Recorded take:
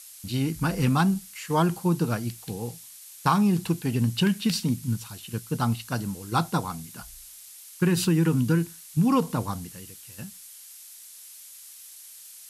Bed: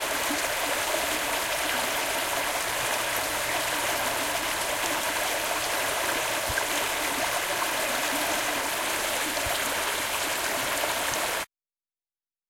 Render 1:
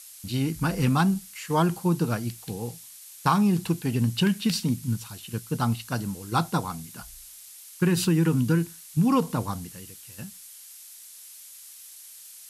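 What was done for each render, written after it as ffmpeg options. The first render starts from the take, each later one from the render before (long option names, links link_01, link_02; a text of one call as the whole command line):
ffmpeg -i in.wav -af anull out.wav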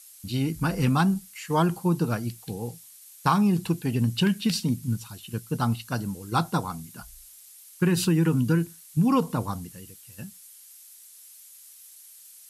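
ffmpeg -i in.wav -af "afftdn=noise_reduction=6:noise_floor=-47" out.wav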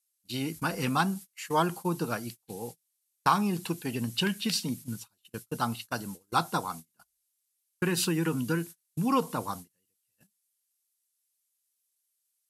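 ffmpeg -i in.wav -af "highpass=frequency=440:poles=1,agate=range=-30dB:threshold=-40dB:ratio=16:detection=peak" out.wav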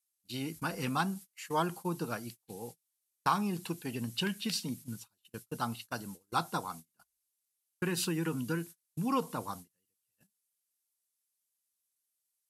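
ffmpeg -i in.wav -af "volume=-5dB" out.wav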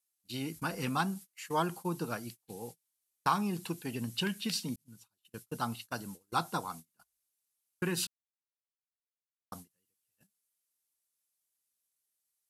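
ffmpeg -i in.wav -filter_complex "[0:a]asplit=4[link_01][link_02][link_03][link_04];[link_01]atrim=end=4.76,asetpts=PTS-STARTPTS,afade=type=out:start_time=4.756:duration=0.004:curve=hsin[link_05];[link_02]atrim=start=4.76:end=8.07,asetpts=PTS-STARTPTS,afade=type=in:duration=0.71,afade=type=out:start_time=3.306:duration=0.004:curve=hsin[link_06];[link_03]atrim=start=8.07:end=9.52,asetpts=PTS-STARTPTS,volume=0[link_07];[link_04]atrim=start=9.52,asetpts=PTS-STARTPTS,afade=type=in:duration=0.004:curve=hsin[link_08];[link_05][link_06][link_07][link_08]concat=n=4:v=0:a=1" out.wav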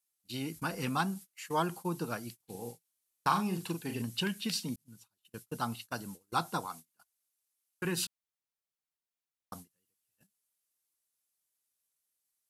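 ffmpeg -i in.wav -filter_complex "[0:a]asettb=1/sr,asplit=3[link_01][link_02][link_03];[link_01]atrim=end=2.364[link_04];[link_02]atrim=start=2.36:end=4.02,asetpts=PTS-STARTPTS,afade=type=in:duration=0.004:curve=qsin,afade=type=out:start_time=1.656:duration=0.004:curve=qsin,asplit=2[link_05][link_06];[link_06]adelay=42,volume=-6.5dB[link_07];[link_05][link_07]amix=inputs=2:normalize=0,atrim=end_sample=73206[link_08];[link_03]atrim=start=4.016[link_09];[link_04][link_08]acrossfade=duration=0.004:curve1=hsin:curve2=qsin[link_10];[link_10][link_09]acrossfade=duration=0.004:curve1=qsin:curve2=hsin,asettb=1/sr,asplit=3[link_11][link_12][link_13];[link_11]atrim=end=6.664[link_14];[link_12]atrim=start=6.66:end=7.85,asetpts=PTS-STARTPTS,afade=type=in:duration=0.004:curve=qsin,afade=type=out:start_time=1.186:duration=0.004:curve=qsin,lowshelf=frequency=280:gain=-9[link_15];[link_13]atrim=start=7.846[link_16];[link_14][link_15]acrossfade=duration=0.004:curve1=hsin:curve2=qsin[link_17];[link_17][link_16]acrossfade=duration=0.004:curve1=qsin:curve2=hsin" out.wav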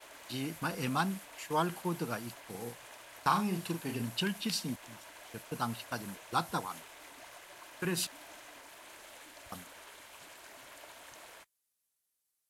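ffmpeg -i in.wav -i bed.wav -filter_complex "[1:a]volume=-24.5dB[link_01];[0:a][link_01]amix=inputs=2:normalize=0" out.wav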